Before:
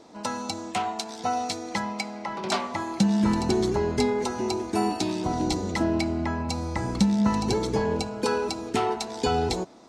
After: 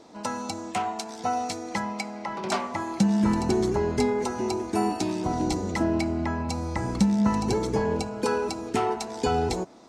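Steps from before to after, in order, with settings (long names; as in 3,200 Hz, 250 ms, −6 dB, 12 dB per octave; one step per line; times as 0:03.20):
dynamic equaliser 3,800 Hz, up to −6 dB, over −47 dBFS, Q 1.7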